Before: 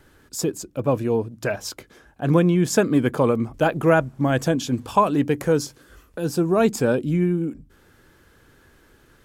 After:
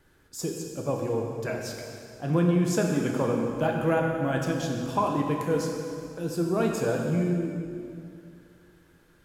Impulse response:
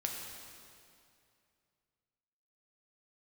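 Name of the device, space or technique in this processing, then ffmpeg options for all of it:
stairwell: -filter_complex "[1:a]atrim=start_sample=2205[s0];[0:a][s0]afir=irnorm=-1:irlink=0,volume=0.398"

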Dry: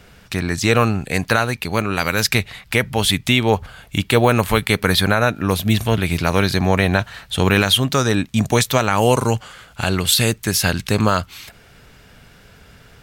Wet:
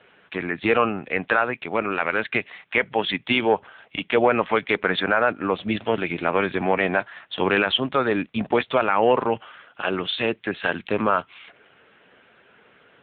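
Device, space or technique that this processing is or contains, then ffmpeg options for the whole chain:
telephone: -af "highpass=300,lowpass=3600,asoftclip=type=tanh:threshold=0.596" -ar 8000 -c:a libopencore_amrnb -b:a 6700

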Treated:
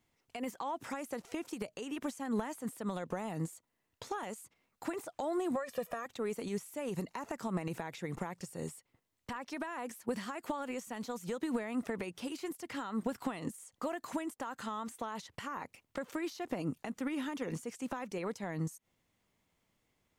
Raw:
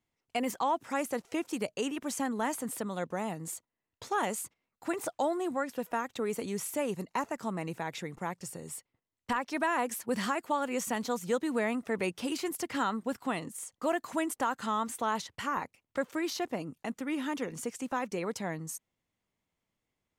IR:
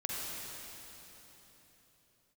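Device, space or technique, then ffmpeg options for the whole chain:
de-esser from a sidechain: -filter_complex "[0:a]asettb=1/sr,asplit=3[s0][s1][s2];[s0]atrim=end=5.554[s3];[s1]atrim=start=5.55:end=6.06,asetpts=PTS-STARTPTS,afade=t=in:d=0.004:c=qsin,afade=t=out:st=0.506:d=0.004:c=qsin,aecho=1:1:1.7:0.89,atrim=end_sample=22491[s4];[s2]atrim=start=6.056[s5];[s3][s4]acrossfade=d=0.004:c1=hsin:c2=qsin[s6];[s6][s5]acrossfade=d=0.004:c1=qsin:c2=hsin,asplit=2[s7][s8];[s8]highpass=f=6000:p=1,apad=whole_len=890286[s9];[s7][s9]sidechaincompress=threshold=0.00141:ratio=8:attack=2.5:release=80,volume=2.24"

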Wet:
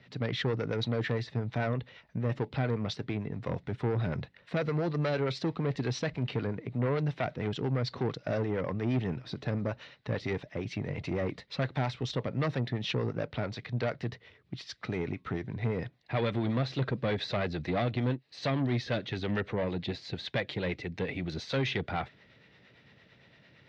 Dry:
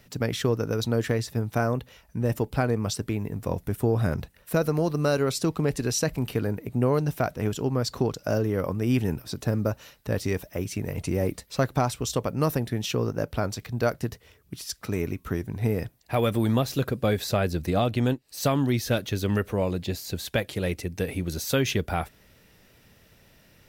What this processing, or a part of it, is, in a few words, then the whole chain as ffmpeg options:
guitar amplifier with harmonic tremolo: -filter_complex "[0:a]acrossover=split=480[s0][s1];[s0]aeval=exprs='val(0)*(1-0.5/2+0.5/2*cos(2*PI*8.8*n/s))':c=same[s2];[s1]aeval=exprs='val(0)*(1-0.5/2-0.5/2*cos(2*PI*8.8*n/s))':c=same[s3];[s2][s3]amix=inputs=2:normalize=0,asoftclip=type=tanh:threshold=0.0562,highpass=110,equalizer=f=130:t=q:w=4:g=5,equalizer=f=2000:t=q:w=4:g=6,equalizer=f=3800:t=q:w=4:g=4,lowpass=f=4200:w=0.5412,lowpass=f=4200:w=1.3066"

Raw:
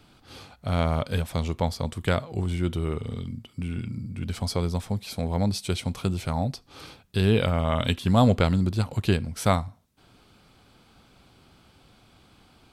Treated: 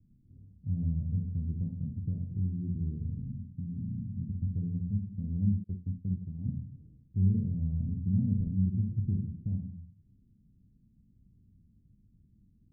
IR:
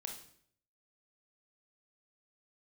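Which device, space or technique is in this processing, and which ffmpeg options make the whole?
club heard from the street: -filter_complex "[0:a]alimiter=limit=0.224:level=0:latency=1:release=358,lowpass=f=210:w=0.5412,lowpass=f=210:w=1.3066[s0];[1:a]atrim=start_sample=2205[s1];[s0][s1]afir=irnorm=-1:irlink=0,asettb=1/sr,asplit=3[s2][s3][s4];[s2]atrim=end=5.644[s5];[s3]atrim=start=5.64:end=6.51,asetpts=PTS-STARTPTS,afade=t=in:d=0.004:c=qsin,afade=t=out:st=0.866:d=0.004:c=qsin,agate=range=0.0224:threshold=0.0447:ratio=3:detection=peak[s6];[s4]atrim=start=6.506[s7];[s5][s6]acrossfade=d=0.004:c1=hsin:c2=qsin[s8];[s8][s7]acrossfade=d=0.004:c1=qsin:c2=hsin"

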